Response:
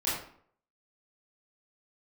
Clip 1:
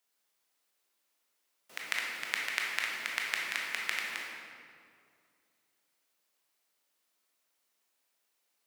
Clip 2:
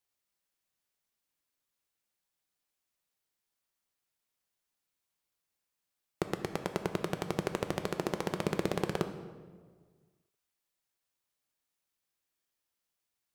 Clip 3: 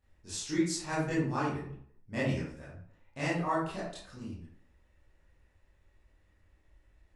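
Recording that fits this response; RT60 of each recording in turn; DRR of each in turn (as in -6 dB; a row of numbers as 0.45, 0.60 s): 3; 2.3, 1.6, 0.60 s; -2.5, 7.0, -10.0 dB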